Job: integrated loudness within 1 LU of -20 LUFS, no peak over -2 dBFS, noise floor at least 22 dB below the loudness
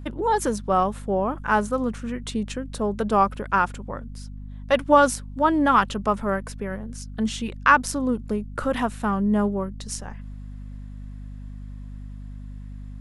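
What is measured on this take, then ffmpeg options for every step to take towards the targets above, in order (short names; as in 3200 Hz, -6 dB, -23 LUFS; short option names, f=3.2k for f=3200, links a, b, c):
hum 50 Hz; harmonics up to 250 Hz; hum level -34 dBFS; loudness -23.5 LUFS; peak -2.5 dBFS; loudness target -20.0 LUFS
-> -af "bandreject=f=50:t=h:w=6,bandreject=f=100:t=h:w=6,bandreject=f=150:t=h:w=6,bandreject=f=200:t=h:w=6,bandreject=f=250:t=h:w=6"
-af "volume=3.5dB,alimiter=limit=-2dB:level=0:latency=1"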